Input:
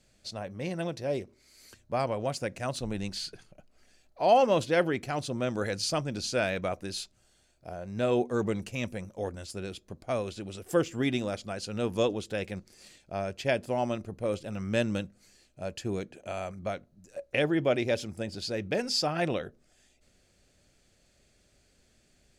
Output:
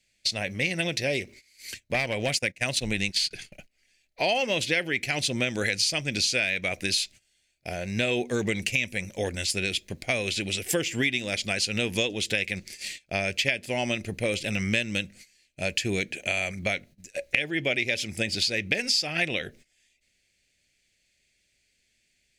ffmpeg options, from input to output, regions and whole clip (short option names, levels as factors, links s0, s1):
-filter_complex "[0:a]asettb=1/sr,asplit=3[s0][s1][s2];[s0]atrim=end=1.944[s3];[s1]atrim=start=1.94:end=3.31,asetpts=PTS-STARTPTS,afade=t=in:d=0.004:c=qsin,afade=t=out:st=1.366:d=0.004:c=qsin,agate=range=0.0891:threshold=0.0112:ratio=16:release=100:detection=peak,aeval=exprs='clip(val(0),-1,0.0631)':c=same[s4];[s2]atrim=start=3.306[s5];[s3][s4]acrossfade=d=0.004:c1=hsin:c2=qsin[s6];[s6][s5]acrossfade=d=0.004:c1=qsin:c2=hsin,agate=range=0.1:threshold=0.002:ratio=16:detection=peak,highshelf=f=1600:t=q:w=3:g=10,acompressor=threshold=0.0316:ratio=6,volume=2.24"